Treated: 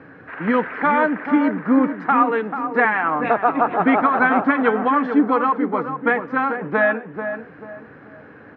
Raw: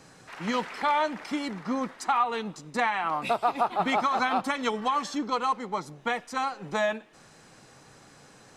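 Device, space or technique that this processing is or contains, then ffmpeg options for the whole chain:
bass cabinet: -filter_complex "[0:a]asettb=1/sr,asplit=3[a][b][c];[a]atrim=end=2.224[d];[b]atrim=start=2.22:end=2.85,asetpts=PTS-STARTPTS,afade=t=in:d=0.004:c=qsin,afade=t=out:st=0.626:d=0.004:c=qsin,highpass=f=220:w=0.5412,highpass=f=220:w=1.3066[e];[c]atrim=start=2.846[f];[d][e]acrossfade=d=0.004:c1=hsin:c2=qsin[g];[g][f]acrossfade=d=0.004:c1=qsin:c2=hsin,highpass=70,equalizer=f=84:t=q:w=4:g=6,equalizer=f=280:t=q:w=4:g=9,equalizer=f=470:t=q:w=4:g=5,equalizer=f=840:t=q:w=4:g=-3,equalizer=f=1.6k:t=q:w=4:g=8,lowpass=f=2.2k:w=0.5412,lowpass=f=2.2k:w=1.3066,asplit=2[h][i];[i]adelay=438,lowpass=f=1.3k:p=1,volume=-7dB,asplit=2[j][k];[k]adelay=438,lowpass=f=1.3k:p=1,volume=0.36,asplit=2[l][m];[m]adelay=438,lowpass=f=1.3k:p=1,volume=0.36,asplit=2[n][o];[o]adelay=438,lowpass=f=1.3k:p=1,volume=0.36[p];[h][j][l][n][p]amix=inputs=5:normalize=0,volume=7dB"

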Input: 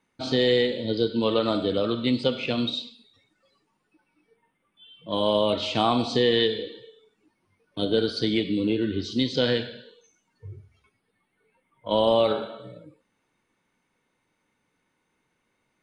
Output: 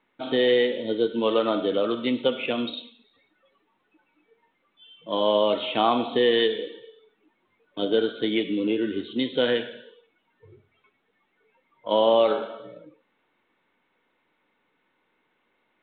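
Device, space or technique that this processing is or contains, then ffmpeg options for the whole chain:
telephone: -af "highpass=270,lowpass=3.6k,volume=2dB" -ar 8000 -c:a pcm_mulaw

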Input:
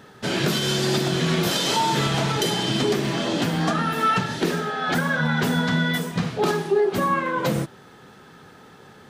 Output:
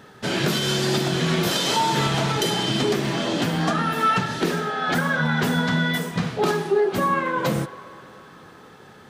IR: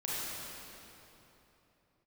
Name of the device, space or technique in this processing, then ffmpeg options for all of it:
filtered reverb send: -filter_complex "[0:a]asplit=2[a][b];[b]highpass=460,lowpass=3.3k[c];[1:a]atrim=start_sample=2205[d];[c][d]afir=irnorm=-1:irlink=0,volume=-17.5dB[e];[a][e]amix=inputs=2:normalize=0"

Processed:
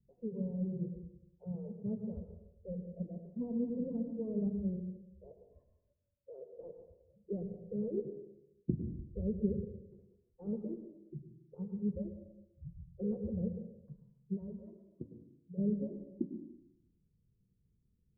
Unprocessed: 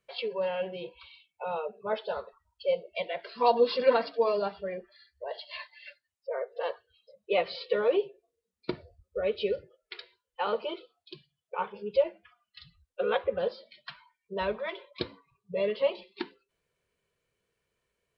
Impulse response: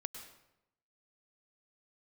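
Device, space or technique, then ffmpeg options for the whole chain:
club heard from the street: -filter_complex "[0:a]asplit=3[a][b][c];[a]afade=t=out:st=14.35:d=0.02[d];[b]highpass=f=1k:p=1,afade=t=in:st=14.35:d=0.02,afade=t=out:st=15.57:d=0.02[e];[c]afade=t=in:st=15.57:d=0.02[f];[d][e][f]amix=inputs=3:normalize=0,alimiter=limit=-19dB:level=0:latency=1:release=283,lowpass=f=220:w=0.5412,lowpass=f=220:w=1.3066[g];[1:a]atrim=start_sample=2205[h];[g][h]afir=irnorm=-1:irlink=0,volume=15.5dB"

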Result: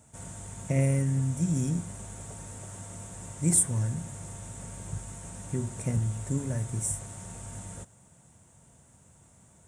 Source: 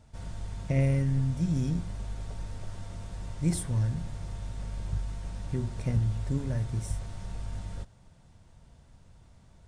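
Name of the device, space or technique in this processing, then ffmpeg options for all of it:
budget condenser microphone: -af "highpass=110,highshelf=f=6k:t=q:w=3:g=9,volume=1.5dB"

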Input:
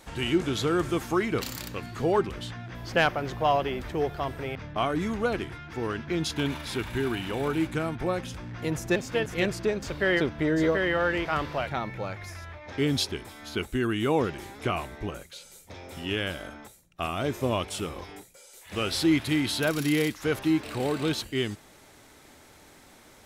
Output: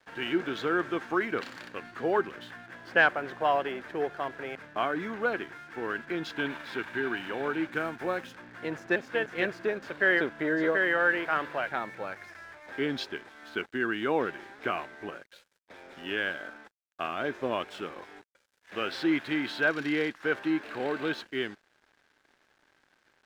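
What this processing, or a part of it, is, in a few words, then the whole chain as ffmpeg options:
pocket radio on a weak battery: -filter_complex "[0:a]highpass=270,lowpass=3.1k,aeval=exprs='sgn(val(0))*max(abs(val(0))-0.00211,0)':c=same,equalizer=f=1.6k:t=o:w=0.34:g=9.5,asettb=1/sr,asplit=3[a][b][c];[a]atrim=end=7.734[d];[b]atrim=start=7.73:end=8.33,asetpts=PTS-STARTPTS,afade=t=in:d=0.004:c=qsin,afade=t=out:st=0.596:d=0.004:c=qsin,highshelf=f=5.8k:g=8[e];[c]atrim=start=8.326[f];[d][e]acrossfade=d=0.004:c1=hsin:c2=qsin[g];[g][f]acrossfade=d=0.004:c1=qsin:c2=hsin,volume=-2dB"

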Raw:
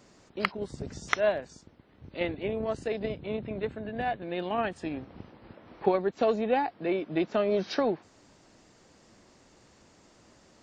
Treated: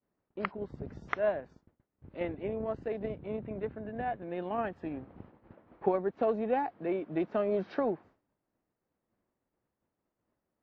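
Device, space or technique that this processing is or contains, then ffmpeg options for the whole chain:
hearing-loss simulation: -filter_complex "[0:a]asettb=1/sr,asplit=3[a][b][c];[a]atrim=end=6.344[d];[b]atrim=start=6.34:end=7.67,asetpts=PTS-STARTPTS,afade=t=in:d=0.004:c=qsin,afade=t=out:st=1.326:d=0.004:c=qsin,highshelf=f=5k:g=6.5[e];[c]atrim=start=7.666[f];[d][e]acrossfade=d=0.004:c1=hsin:c2=qsin[g];[g][f]acrossfade=d=0.004:c1=qsin:c2=hsin,lowpass=1.7k,agate=range=-33dB:threshold=-46dB:ratio=3:detection=peak,volume=-3.5dB"

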